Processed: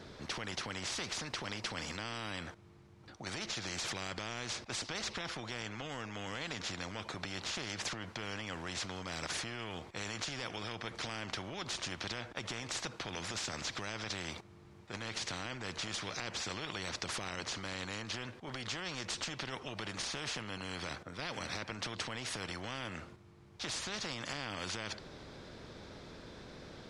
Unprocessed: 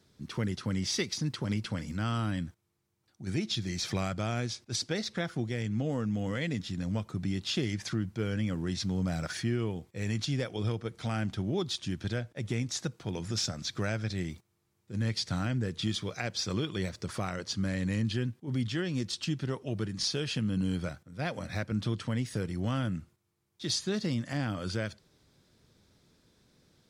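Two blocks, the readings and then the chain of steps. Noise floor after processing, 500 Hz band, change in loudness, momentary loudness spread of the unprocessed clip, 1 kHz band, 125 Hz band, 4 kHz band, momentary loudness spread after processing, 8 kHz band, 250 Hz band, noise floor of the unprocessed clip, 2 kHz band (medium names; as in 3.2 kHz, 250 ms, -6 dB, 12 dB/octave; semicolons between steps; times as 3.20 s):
-57 dBFS, -8.0 dB, -6.5 dB, 5 LU, -0.5 dB, -15.0 dB, -2.5 dB, 10 LU, -2.0 dB, -13.0 dB, -75 dBFS, 0.0 dB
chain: peak limiter -28.5 dBFS, peak gain reduction 9.5 dB; tape spacing loss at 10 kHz 21 dB; spectrum-flattening compressor 4:1; trim +9.5 dB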